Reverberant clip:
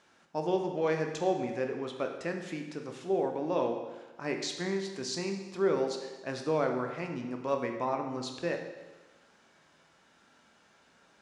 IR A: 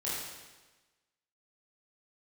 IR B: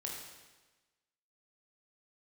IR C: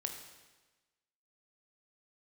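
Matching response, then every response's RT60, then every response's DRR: C; 1.2, 1.2, 1.2 seconds; −9.0, −2.0, 3.5 decibels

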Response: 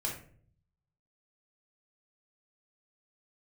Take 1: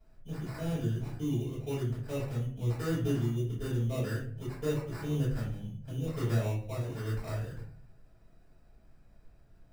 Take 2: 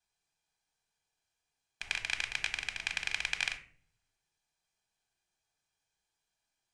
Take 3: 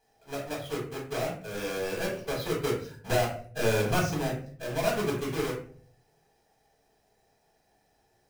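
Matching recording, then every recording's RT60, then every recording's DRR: 3; 0.50, 0.50, 0.50 seconds; −11.5, 7.5, −2.0 decibels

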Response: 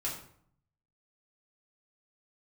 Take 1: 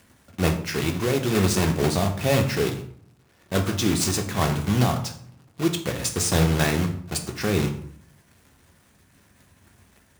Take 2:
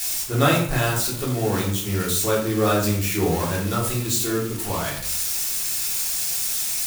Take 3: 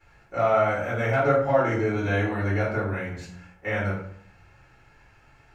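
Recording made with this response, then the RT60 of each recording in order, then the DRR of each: 2; 0.60, 0.60, 0.60 seconds; 4.0, −5.5, −13.5 decibels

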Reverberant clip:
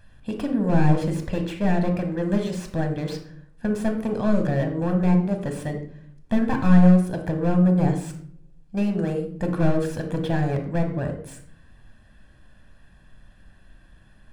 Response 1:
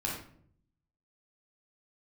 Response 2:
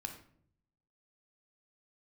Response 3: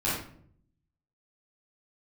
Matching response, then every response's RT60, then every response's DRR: 2; 0.60, 0.60, 0.60 seconds; −3.5, 4.5, −10.5 decibels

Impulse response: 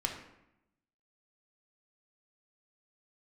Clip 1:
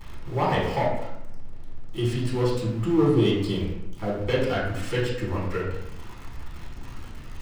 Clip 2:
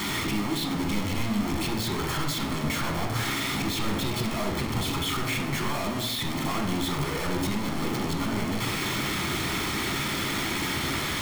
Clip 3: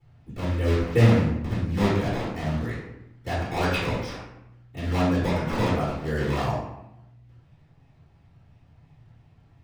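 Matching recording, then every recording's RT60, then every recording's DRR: 2; 0.85, 0.85, 0.85 seconds; −8.0, 1.0, −15.5 decibels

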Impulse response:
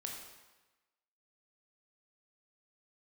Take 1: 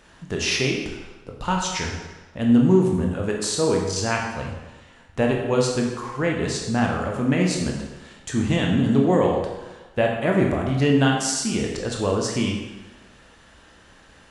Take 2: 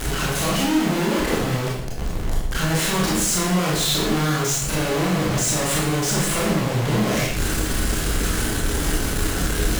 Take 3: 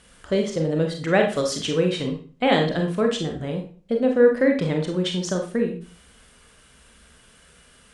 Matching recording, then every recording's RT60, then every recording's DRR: 1; 1.1, 0.75, 0.40 seconds; −0.5, −5.0, 2.5 decibels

